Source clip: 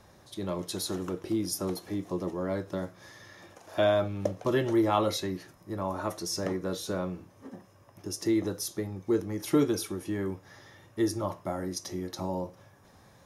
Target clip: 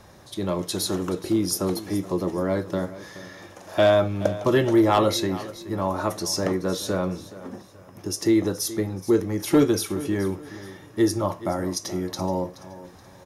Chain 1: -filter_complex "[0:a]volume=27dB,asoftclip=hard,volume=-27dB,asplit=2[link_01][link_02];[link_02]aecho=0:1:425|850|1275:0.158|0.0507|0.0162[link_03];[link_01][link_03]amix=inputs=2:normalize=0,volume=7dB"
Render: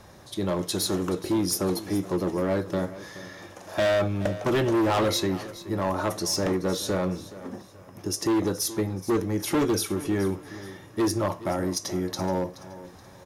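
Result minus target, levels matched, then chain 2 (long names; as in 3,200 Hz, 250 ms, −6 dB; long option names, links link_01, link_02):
gain into a clipping stage and back: distortion +15 dB
-filter_complex "[0:a]volume=18dB,asoftclip=hard,volume=-18dB,asplit=2[link_01][link_02];[link_02]aecho=0:1:425|850|1275:0.158|0.0507|0.0162[link_03];[link_01][link_03]amix=inputs=2:normalize=0,volume=7dB"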